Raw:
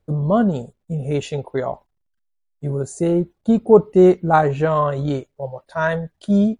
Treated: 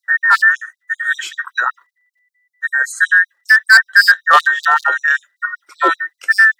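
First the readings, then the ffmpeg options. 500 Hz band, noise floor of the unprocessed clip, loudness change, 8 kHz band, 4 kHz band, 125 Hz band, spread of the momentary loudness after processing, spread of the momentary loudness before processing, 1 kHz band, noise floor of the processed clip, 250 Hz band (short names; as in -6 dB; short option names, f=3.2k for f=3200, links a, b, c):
-14.5 dB, -72 dBFS, +6.5 dB, +10.5 dB, n/a, under -40 dB, 14 LU, 15 LU, +6.0 dB, -76 dBFS, under -20 dB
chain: -af "afftfilt=real='real(if(between(b,1,1012),(2*floor((b-1)/92)+1)*92-b,b),0)':imag='imag(if(between(b,1,1012),(2*floor((b-1)/92)+1)*92-b,b),0)*if(between(b,1,1012),-1,1)':win_size=2048:overlap=0.75,volume=10.5dB,asoftclip=hard,volume=-10.5dB,afftfilt=real='re*gte(b*sr/1024,260*pow(3900/260,0.5+0.5*sin(2*PI*5.2*pts/sr)))':imag='im*gte(b*sr/1024,260*pow(3900/260,0.5+0.5*sin(2*PI*5.2*pts/sr)))':win_size=1024:overlap=0.75,volume=7.5dB"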